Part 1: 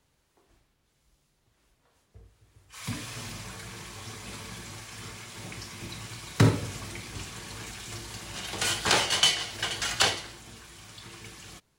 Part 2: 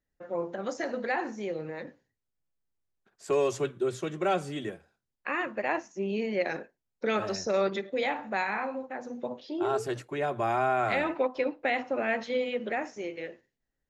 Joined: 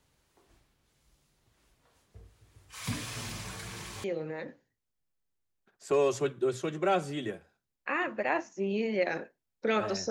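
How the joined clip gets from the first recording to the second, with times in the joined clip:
part 1
4.04 s: go over to part 2 from 1.43 s

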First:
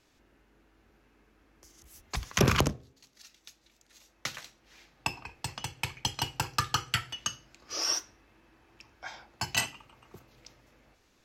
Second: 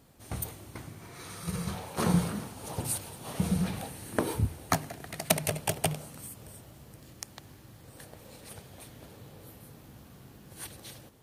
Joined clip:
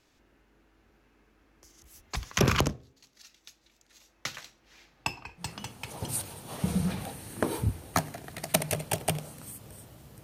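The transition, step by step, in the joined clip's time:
first
5.78 s: go over to second from 2.54 s, crossfade 0.82 s linear

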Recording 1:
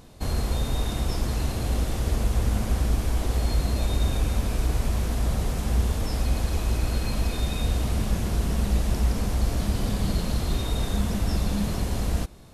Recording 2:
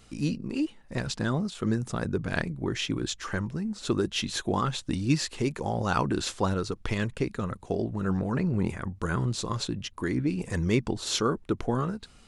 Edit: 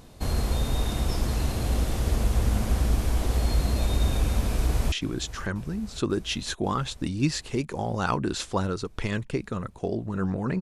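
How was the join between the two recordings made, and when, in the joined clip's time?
recording 1
4.47–4.92 s: echo throw 540 ms, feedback 75%, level -15 dB
4.92 s: go over to recording 2 from 2.79 s

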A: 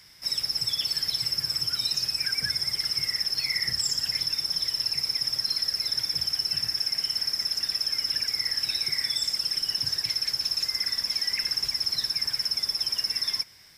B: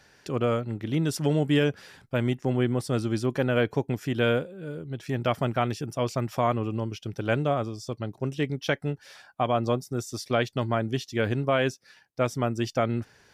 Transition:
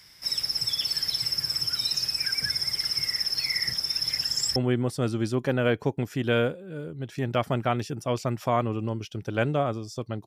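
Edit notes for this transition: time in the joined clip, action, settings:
A
3.74–4.56 s: reverse
4.56 s: go over to B from 2.47 s

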